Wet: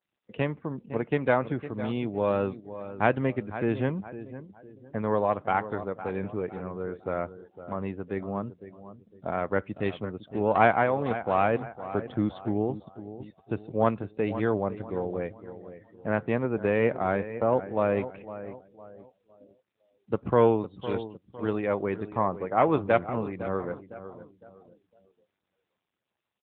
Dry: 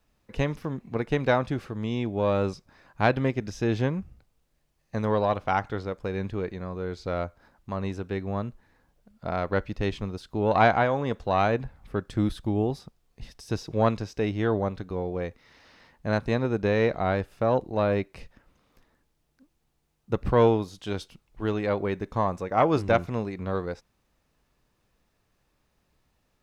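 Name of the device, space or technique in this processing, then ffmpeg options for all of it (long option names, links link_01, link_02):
mobile call with aggressive noise cancelling: -filter_complex "[0:a]asettb=1/sr,asplit=3[link_01][link_02][link_03];[link_01]atrim=end=2.114[link_04];[link_02]atrim=start=2.11:end=3.01,asetpts=PTS-STARTPTS,afade=type=in:duration=0.004:curve=qsin,afade=type=out:start_time=0.896:duration=0.004:curve=qsin,equalizer=frequency=4000:width=3.8:gain=6[link_05];[link_03]atrim=start=3.006[link_06];[link_04][link_05]acrossfade=duration=0.004:curve1=hsin:curve2=qsin[link_07];[link_07][link_06]acrossfade=duration=0.004:curve1=qsin:curve2=hsin,highpass=frequency=130:poles=1,aecho=1:1:507|1014|1521|2028:0.224|0.0895|0.0358|0.0143,afftdn=noise_reduction=27:noise_floor=-48" -ar 8000 -c:a libopencore_amrnb -b:a 10200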